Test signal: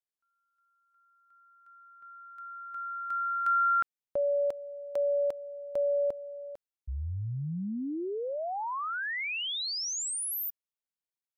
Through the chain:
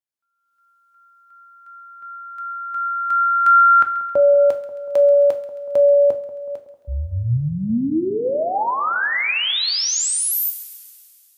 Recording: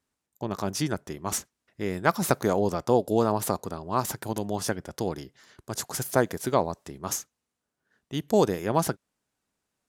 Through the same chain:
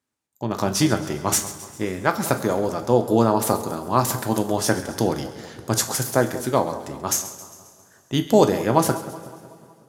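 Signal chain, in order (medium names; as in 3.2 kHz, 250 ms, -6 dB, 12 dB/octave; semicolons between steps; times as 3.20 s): high-pass 71 Hz; level rider gain up to 14 dB; on a send: two-band feedback delay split 1.3 kHz, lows 186 ms, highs 134 ms, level -15 dB; on the sum: two-slope reverb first 0.34 s, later 2.6 s, from -18 dB, DRR 6.5 dB; trim -2 dB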